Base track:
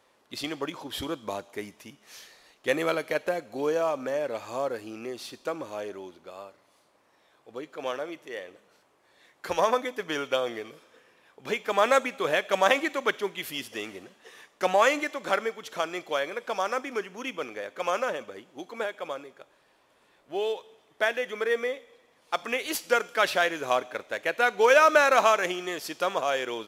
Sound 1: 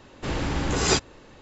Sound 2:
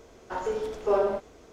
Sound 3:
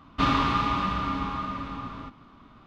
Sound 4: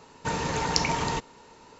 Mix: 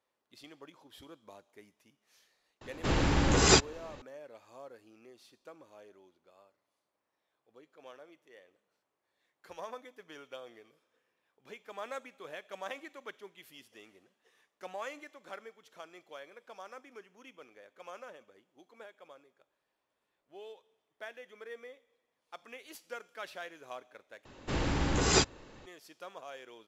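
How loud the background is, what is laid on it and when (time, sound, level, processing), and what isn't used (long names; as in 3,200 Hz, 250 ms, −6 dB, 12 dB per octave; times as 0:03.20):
base track −19.5 dB
0:02.61: mix in 1 −0.5 dB
0:24.25: overwrite with 1 −4 dB
not used: 2, 3, 4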